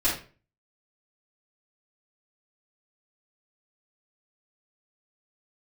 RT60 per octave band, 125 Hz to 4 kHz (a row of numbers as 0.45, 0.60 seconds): 0.55, 0.45, 0.40, 0.35, 0.35, 0.30 seconds